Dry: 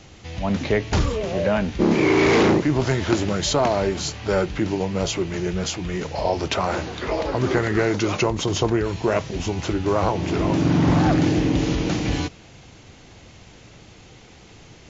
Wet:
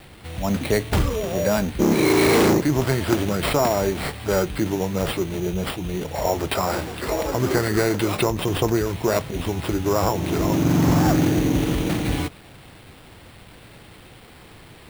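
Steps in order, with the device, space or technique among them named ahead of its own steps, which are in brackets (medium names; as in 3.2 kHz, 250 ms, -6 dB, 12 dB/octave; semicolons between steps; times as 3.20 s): 5.31–6.09 s: high-order bell 1.5 kHz -8 dB 1.2 oct; early 8-bit sampler (sample-rate reducer 6.3 kHz, jitter 0%; bit crusher 8-bit)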